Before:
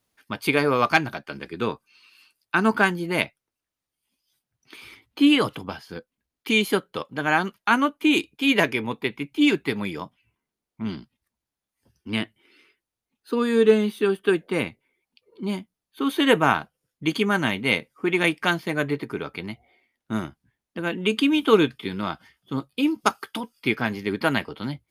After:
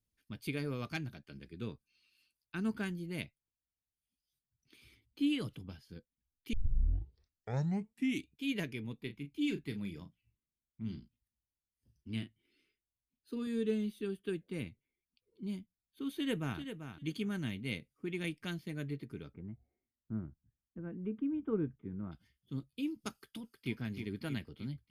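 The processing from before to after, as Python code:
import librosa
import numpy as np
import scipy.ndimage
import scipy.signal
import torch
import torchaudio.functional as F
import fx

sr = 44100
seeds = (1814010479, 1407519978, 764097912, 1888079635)

y = fx.doubler(x, sr, ms=35.0, db=-10.0, at=(9.01, 13.47))
y = fx.echo_throw(y, sr, start_s=16.15, length_s=0.44, ms=390, feedback_pct=15, wet_db=-9.0)
y = fx.lowpass(y, sr, hz=1400.0, slope=24, at=(19.32, 22.11), fade=0.02)
y = fx.echo_throw(y, sr, start_s=23.13, length_s=0.61, ms=310, feedback_pct=55, wet_db=-6.5)
y = fx.edit(y, sr, fx.tape_start(start_s=6.53, length_s=1.79), tone=tone)
y = fx.tone_stack(y, sr, knobs='10-0-1')
y = F.gain(torch.from_numpy(y), 5.0).numpy()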